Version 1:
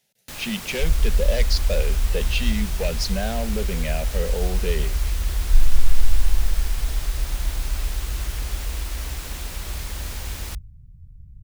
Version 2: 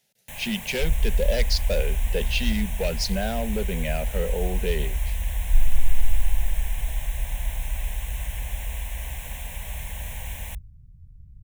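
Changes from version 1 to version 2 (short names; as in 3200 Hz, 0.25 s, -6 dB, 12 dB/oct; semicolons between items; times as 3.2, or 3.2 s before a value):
first sound: add fixed phaser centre 1300 Hz, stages 6; second sound -3.0 dB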